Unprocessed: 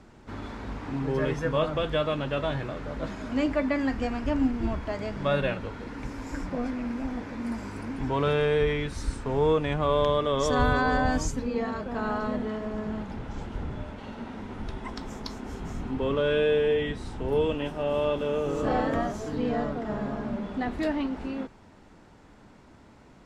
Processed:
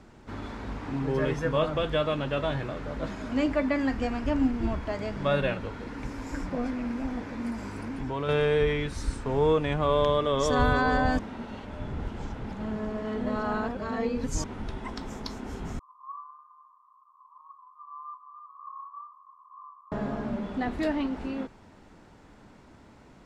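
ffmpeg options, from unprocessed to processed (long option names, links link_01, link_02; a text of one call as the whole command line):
ffmpeg -i in.wav -filter_complex "[0:a]asettb=1/sr,asplit=3[link_01][link_02][link_03];[link_01]atrim=end=7.504[link_04];[link_02]atrim=start=7.5:end=8.29,asetpts=PTS-STARTPTS,afade=type=in:duration=0.004:curve=qsin,afade=type=out:start_time=0.786:duration=0.004:curve=qsin,acompressor=threshold=-31dB:ratio=2:attack=3.2:release=140:knee=1:detection=peak[link_05];[link_03]atrim=start=8.286[link_06];[link_04][link_05]acrossfade=duration=0.004:curve1=hsin:curve2=qsin[link_07];[link_07][link_06]acrossfade=duration=0.004:curve1=qsin:curve2=hsin,asettb=1/sr,asplit=3[link_08][link_09][link_10];[link_08]atrim=end=15.794[link_11];[link_09]atrim=start=15.79:end=19.92,asetpts=PTS-STARTPTS,afade=type=in:duration=0.004:curve=qsin,afade=type=out:start_time=4.126:duration=0.004:curve=qsin,asuperpass=centerf=1100:order=8:qfactor=5.8[link_12];[link_10]atrim=start=19.916[link_13];[link_11][link_12]acrossfade=duration=0.004:curve1=hsin:curve2=qsin[link_14];[link_14][link_13]acrossfade=duration=0.004:curve1=qsin:curve2=hsin,asplit=3[link_15][link_16][link_17];[link_15]atrim=end=11.192[link_18];[link_16]atrim=start=11.188:end=14.442,asetpts=PTS-STARTPTS,areverse[link_19];[link_17]atrim=start=14.438[link_20];[link_18][link_19]acrossfade=duration=0.004:curve1=hsin:curve2=hsin[link_21];[link_21][link_20]acrossfade=duration=0.004:curve1=hsin:curve2=hsin" out.wav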